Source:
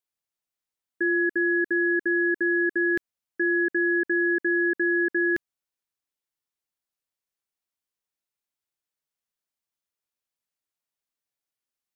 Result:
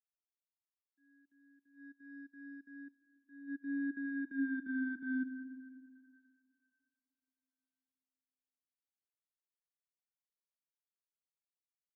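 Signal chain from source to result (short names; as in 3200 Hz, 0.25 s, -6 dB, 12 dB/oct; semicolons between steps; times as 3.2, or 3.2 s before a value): Wiener smoothing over 41 samples; Doppler pass-by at 4.45, 11 m/s, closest 3.3 m; HPF 270 Hz 24 dB/oct; dynamic EQ 370 Hz, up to +5 dB, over -41 dBFS, Q 6.5; level quantiser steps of 11 dB; transient shaper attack -7 dB, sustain -11 dB; frequency shift -78 Hz; resonator 510 Hz, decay 0.43 s, mix 50%; soft clip -29.5 dBFS, distortion -29 dB; reverb RT60 4.0 s, pre-delay 60 ms, DRR 9 dB; spectral expander 1.5:1; gain +4.5 dB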